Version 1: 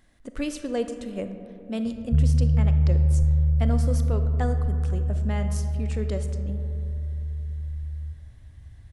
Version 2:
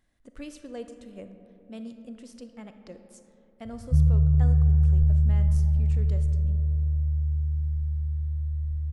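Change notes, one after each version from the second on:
speech −11.0 dB
background: entry +1.80 s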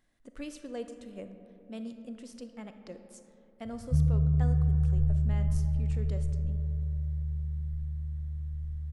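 master: add parametric band 63 Hz −8.5 dB 1.2 octaves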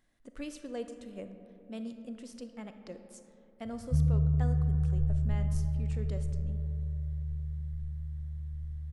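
background: send off

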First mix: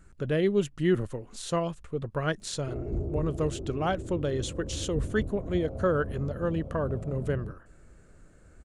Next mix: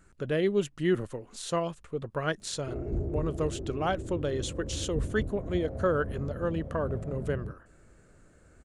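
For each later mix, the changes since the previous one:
speech: add low-shelf EQ 160 Hz −7.5 dB
background: remove Butterworth band-reject 1,800 Hz, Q 2.4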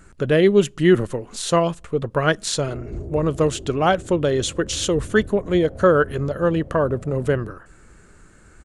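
speech +11.0 dB
reverb: on, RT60 0.50 s

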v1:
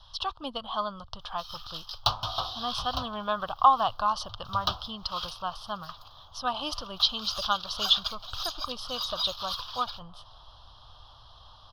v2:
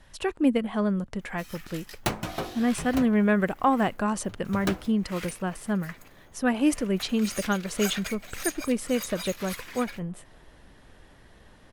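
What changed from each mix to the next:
second sound −3.0 dB
master: remove drawn EQ curve 110 Hz 0 dB, 190 Hz −19 dB, 410 Hz −20 dB, 650 Hz −2 dB, 1,200 Hz +9 dB, 2,100 Hz −28 dB, 3,200 Hz +12 dB, 5,200 Hz +9 dB, 7,600 Hz −22 dB, 13,000 Hz −9 dB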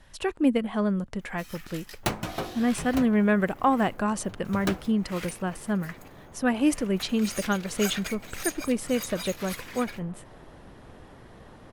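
second sound +9.0 dB

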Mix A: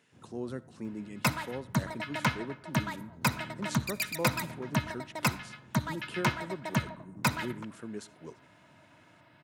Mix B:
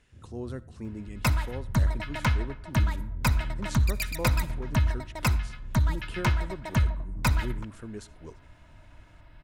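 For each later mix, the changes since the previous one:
first sound: add inverse Chebyshev low-pass filter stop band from 1,200 Hz
master: remove high-pass filter 140 Hz 24 dB per octave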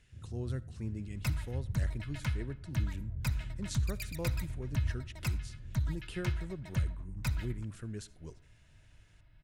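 second sound −10.0 dB
master: add octave-band graphic EQ 125/250/500/1,000 Hz +5/−5/−4/−8 dB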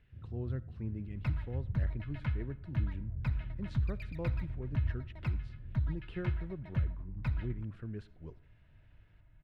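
master: add high-frequency loss of the air 410 metres

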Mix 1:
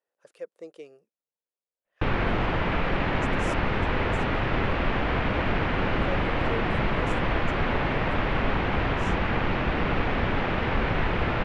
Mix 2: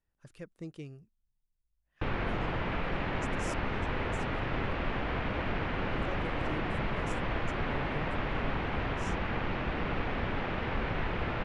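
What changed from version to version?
speech: remove high-pass with resonance 510 Hz, resonance Q 3.6
background −7.5 dB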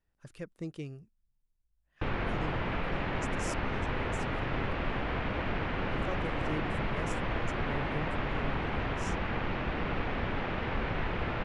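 speech +3.5 dB

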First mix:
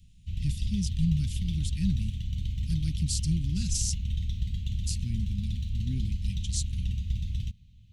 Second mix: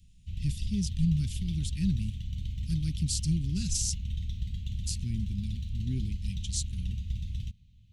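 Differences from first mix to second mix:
speech: add parametric band 400 Hz +8.5 dB 0.3 octaves
background −3.5 dB

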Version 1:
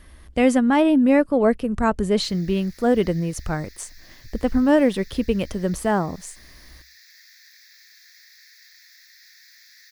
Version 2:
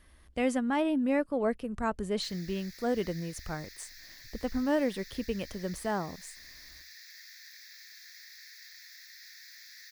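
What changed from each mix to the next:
speech −9.5 dB
master: add low-shelf EQ 450 Hz −3.5 dB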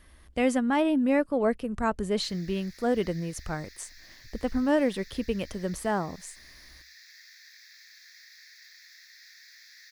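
speech +4.0 dB
background: add high-shelf EQ 9,500 Hz −9 dB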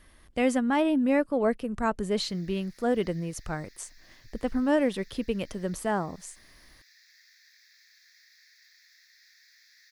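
background −7.0 dB
master: add parametric band 64 Hz −11.5 dB 0.28 octaves

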